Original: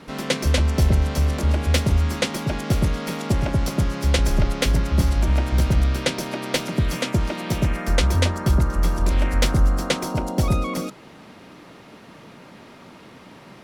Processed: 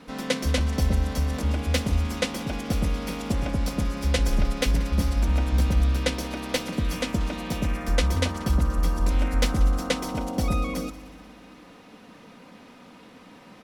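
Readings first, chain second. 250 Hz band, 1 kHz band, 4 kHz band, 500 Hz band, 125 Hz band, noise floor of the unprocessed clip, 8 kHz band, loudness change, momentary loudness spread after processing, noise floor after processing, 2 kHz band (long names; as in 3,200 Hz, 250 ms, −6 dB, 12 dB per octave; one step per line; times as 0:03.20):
−3.0 dB, −4.0 dB, −4.0 dB, −4.0 dB, −5.0 dB, −45 dBFS, −4.0 dB, −4.0 dB, 6 LU, −49 dBFS, −4.0 dB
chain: comb filter 4 ms, depth 49%
on a send: echo machine with several playback heads 61 ms, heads all three, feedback 62%, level −22.5 dB
on the sum: level −5 dB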